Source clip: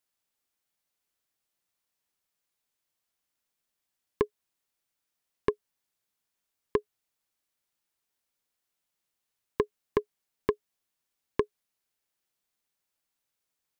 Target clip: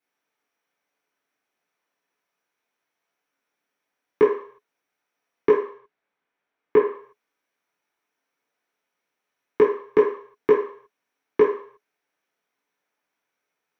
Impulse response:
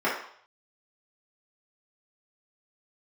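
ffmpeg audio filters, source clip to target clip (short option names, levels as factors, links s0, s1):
-filter_complex "[0:a]asettb=1/sr,asplit=3[s0][s1][s2];[s0]atrim=end=5.494[s3];[s1]atrim=start=5.49:end=6.77,asetpts=PTS-STARTPTS,afade=t=in:d=0.004:c=qsin,afade=t=out:st=1.276:d=0.004:c=qsin,lowpass=3400[s4];[s2]atrim=start=6.766[s5];[s3][s4]acrossfade=d=0.004:c1=hsin:c2=qsin[s6];[s6][s5]acrossfade=d=0.004:c1=qsin:c2=hsin[s7];[1:a]atrim=start_sample=2205,asetrate=48510,aresample=44100[s8];[s7][s8]afir=irnorm=-1:irlink=0,volume=0.631"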